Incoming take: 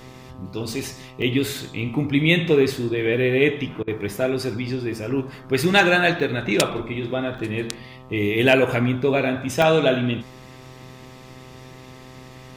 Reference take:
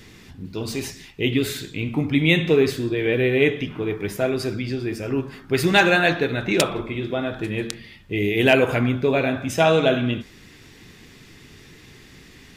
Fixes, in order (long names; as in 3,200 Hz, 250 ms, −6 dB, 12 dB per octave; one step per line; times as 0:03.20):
hum removal 128.7 Hz, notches 10
repair the gap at 0:01.22/0:03.99/0:06.20/0:07.38/0:09.62, 1.1 ms
repair the gap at 0:03.83, 44 ms